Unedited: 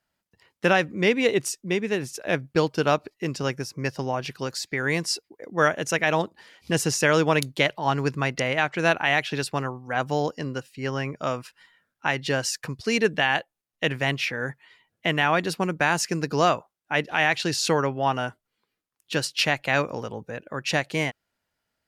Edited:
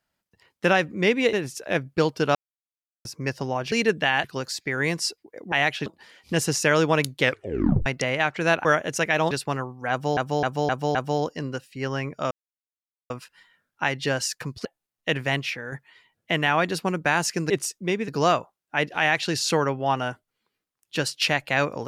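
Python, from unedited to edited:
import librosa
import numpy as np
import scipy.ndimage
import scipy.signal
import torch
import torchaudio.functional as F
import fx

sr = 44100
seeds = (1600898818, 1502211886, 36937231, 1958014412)

y = fx.edit(x, sr, fx.move(start_s=1.33, length_s=0.58, to_s=16.25),
    fx.silence(start_s=2.93, length_s=0.7),
    fx.swap(start_s=5.58, length_s=0.66, other_s=9.03, other_length_s=0.34),
    fx.tape_stop(start_s=7.58, length_s=0.66),
    fx.repeat(start_s=9.97, length_s=0.26, count=5),
    fx.insert_silence(at_s=11.33, length_s=0.79),
    fx.move(start_s=12.88, length_s=0.52, to_s=4.3),
    fx.fade_out_to(start_s=14.08, length_s=0.39, floor_db=-8.0), tone=tone)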